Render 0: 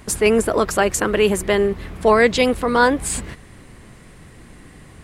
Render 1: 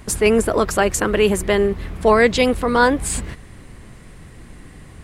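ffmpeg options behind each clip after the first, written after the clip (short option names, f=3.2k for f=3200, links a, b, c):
-af "lowshelf=f=100:g=6"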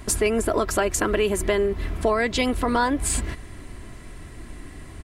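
-af "aecho=1:1:3:0.44,acompressor=threshold=-19dB:ratio=4"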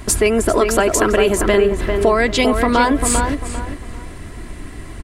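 -filter_complex "[0:a]asplit=2[a][b];[b]adelay=397,lowpass=f=2.4k:p=1,volume=-5dB,asplit=2[c][d];[d]adelay=397,lowpass=f=2.4k:p=1,volume=0.3,asplit=2[e][f];[f]adelay=397,lowpass=f=2.4k:p=1,volume=0.3,asplit=2[g][h];[h]adelay=397,lowpass=f=2.4k:p=1,volume=0.3[i];[a][c][e][g][i]amix=inputs=5:normalize=0,volume=6.5dB"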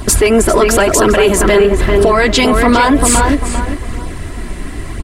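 -af "apsyclip=13dB,flanger=delay=0.2:depth=5.1:regen=-42:speed=0.99:shape=sinusoidal,volume=-1dB"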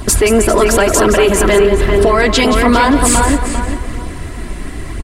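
-af "aecho=1:1:176:0.299,volume=-1dB"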